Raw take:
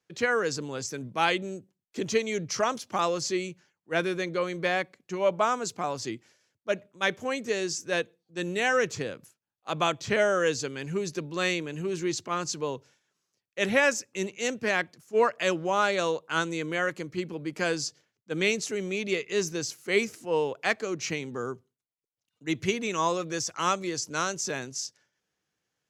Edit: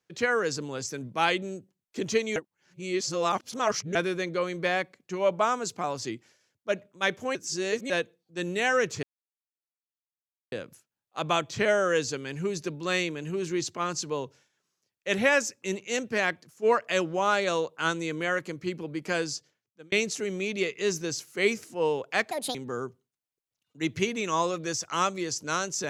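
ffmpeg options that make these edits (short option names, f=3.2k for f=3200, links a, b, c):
-filter_complex "[0:a]asplit=9[a][b][c][d][e][f][g][h][i];[a]atrim=end=2.362[j];[b]atrim=start=2.358:end=3.952,asetpts=PTS-STARTPTS,areverse[k];[c]atrim=start=3.948:end=7.352[l];[d]atrim=start=7.348:end=7.902,asetpts=PTS-STARTPTS,areverse[m];[e]atrim=start=7.898:end=9.03,asetpts=PTS-STARTPTS,afade=t=out:st=1.128:d=0.004:c=hsin,apad=pad_dur=1.49[n];[f]atrim=start=9.03:end=18.43,asetpts=PTS-STARTPTS,afade=t=in:d=0.004:c=hsin,afade=t=out:st=8.39:d=1.01:c=qsin[o];[g]atrim=start=18.43:end=20.824,asetpts=PTS-STARTPTS,afade=t=in:d=0.004:c=hsin[p];[h]atrim=start=20.82:end=21.21,asetpts=PTS-STARTPTS,asetrate=72324,aresample=44100,atrim=end_sample=10487,asetpts=PTS-STARTPTS[q];[i]atrim=start=21.206[r];[j][k]acrossfade=d=0.004:c1=hsin:c2=hsin[s];[s][l]acrossfade=d=0.004:c1=hsin:c2=hsin[t];[t][m]acrossfade=d=0.004:c1=hsin:c2=hsin[u];[n][o][p]concat=n=3:v=0:a=1[v];[u][v]acrossfade=d=0.004:c1=hsin:c2=hsin[w];[w][q]acrossfade=d=0.004:c1=hsin:c2=hsin[x];[x][r]acrossfade=d=0.004:c1=hsin:c2=hsin"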